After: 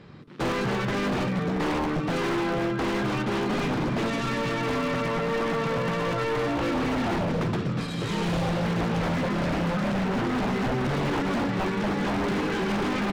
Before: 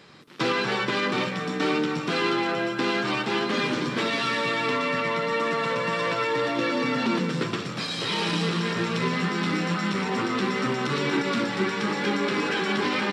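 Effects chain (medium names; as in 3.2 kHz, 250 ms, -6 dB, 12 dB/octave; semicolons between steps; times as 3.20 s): self-modulated delay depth 0.16 ms; RIAA curve playback; wavefolder -20 dBFS; trim -1 dB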